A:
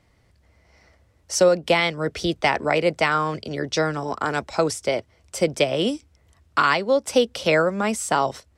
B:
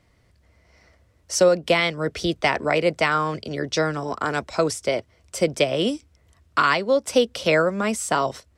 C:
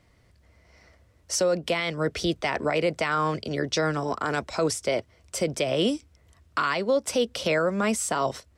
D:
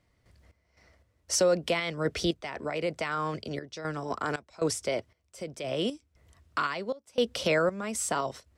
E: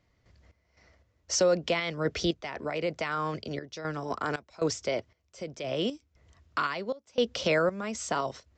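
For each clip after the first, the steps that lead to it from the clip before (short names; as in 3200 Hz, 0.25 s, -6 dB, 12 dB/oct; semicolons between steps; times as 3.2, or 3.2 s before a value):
notch 830 Hz, Q 12
limiter -15 dBFS, peak gain reduction 8.5 dB
random-step tremolo 3.9 Hz, depth 95%
downsampling 16000 Hz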